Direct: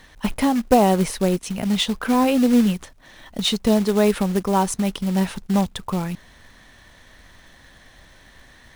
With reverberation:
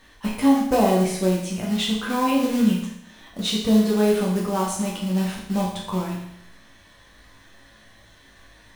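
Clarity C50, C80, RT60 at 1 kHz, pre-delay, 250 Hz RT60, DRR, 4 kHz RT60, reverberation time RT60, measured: 3.5 dB, 6.5 dB, 0.75 s, 9 ms, 0.75 s, −4.5 dB, 0.75 s, 0.75 s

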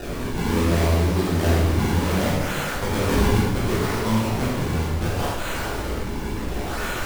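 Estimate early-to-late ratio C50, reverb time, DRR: −1.5 dB, 1.2 s, −8.0 dB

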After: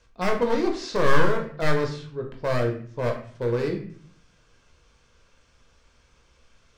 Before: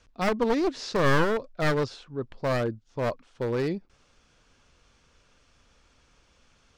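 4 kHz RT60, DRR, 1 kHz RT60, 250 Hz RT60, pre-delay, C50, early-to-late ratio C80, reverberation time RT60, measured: 0.40 s, 1.5 dB, 0.50 s, 0.80 s, 17 ms, 8.0 dB, 12.0 dB, 0.50 s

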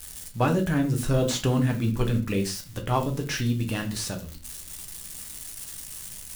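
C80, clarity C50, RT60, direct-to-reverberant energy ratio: 17.5 dB, 12.5 dB, non-exponential decay, 3.0 dB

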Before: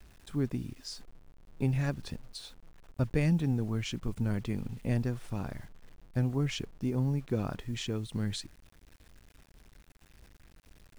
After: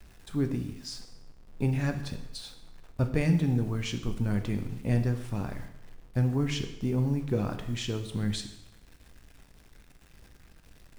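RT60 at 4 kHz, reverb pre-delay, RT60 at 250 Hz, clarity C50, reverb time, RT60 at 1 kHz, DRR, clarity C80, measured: 0.80 s, 4 ms, 0.85 s, 10.0 dB, 0.85 s, 0.85 s, 6.0 dB, 12.0 dB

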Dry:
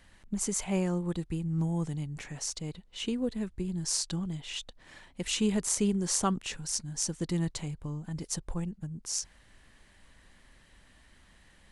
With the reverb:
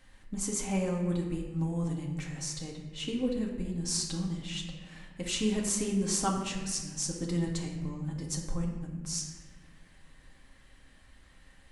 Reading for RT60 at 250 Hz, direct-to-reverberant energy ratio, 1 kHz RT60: 2.0 s, −1.0 dB, 1.2 s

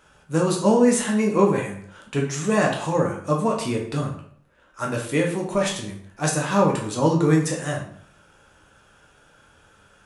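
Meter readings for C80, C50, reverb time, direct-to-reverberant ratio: 10.5 dB, 6.0 dB, 0.60 s, −1.0 dB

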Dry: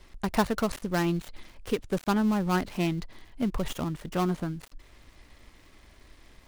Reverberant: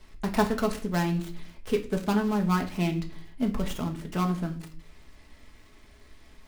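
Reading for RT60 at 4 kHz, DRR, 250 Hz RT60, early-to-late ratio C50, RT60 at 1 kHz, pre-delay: 0.35 s, 2.5 dB, 0.65 s, 12.5 dB, 0.45 s, 5 ms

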